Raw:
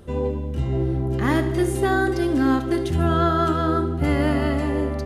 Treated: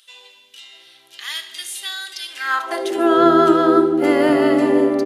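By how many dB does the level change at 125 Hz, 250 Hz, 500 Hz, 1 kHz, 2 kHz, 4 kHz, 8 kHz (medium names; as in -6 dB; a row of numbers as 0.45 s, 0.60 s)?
-14.5 dB, +4.0 dB, +6.5 dB, +5.0 dB, +3.5 dB, +9.0 dB, +6.5 dB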